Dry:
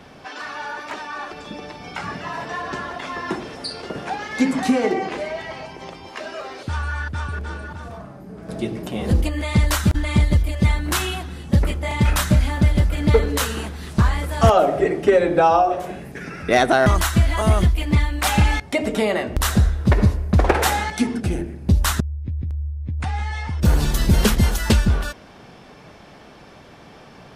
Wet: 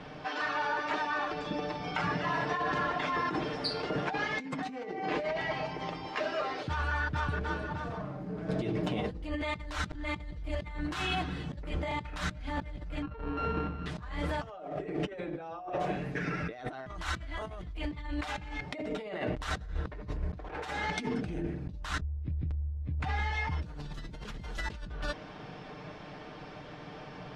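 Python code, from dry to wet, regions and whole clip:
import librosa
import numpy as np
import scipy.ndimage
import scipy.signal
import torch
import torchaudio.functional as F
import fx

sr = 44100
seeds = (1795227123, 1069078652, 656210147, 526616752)

y = fx.chain(x, sr, fx.sample_sort(block=32),
    fx.spacing_loss(db_at_10k=41), at=(13.02, 13.86))
y = scipy.signal.sosfilt(scipy.signal.butter(2, 4200.0, 'lowpass', fs=sr, output='sos'), y)
y = y + 0.5 * np.pad(y, (int(6.6 * sr / 1000.0), 0))[:len(y)]
y = fx.over_compress(y, sr, threshold_db=-28.0, ratio=-1.0)
y = y * librosa.db_to_amplitude(-8.0)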